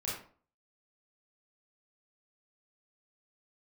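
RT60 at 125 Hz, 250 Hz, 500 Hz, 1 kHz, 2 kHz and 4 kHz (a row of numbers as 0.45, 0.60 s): 0.45, 0.45, 0.45, 0.45, 0.35, 0.30 s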